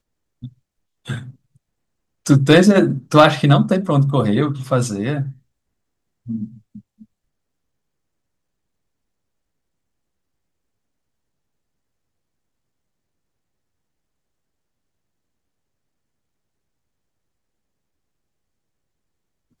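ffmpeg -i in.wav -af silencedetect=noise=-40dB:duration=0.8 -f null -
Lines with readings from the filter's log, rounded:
silence_start: 1.31
silence_end: 2.26 | silence_duration: 0.95
silence_start: 5.33
silence_end: 6.26 | silence_duration: 0.93
silence_start: 7.03
silence_end: 19.60 | silence_duration: 12.57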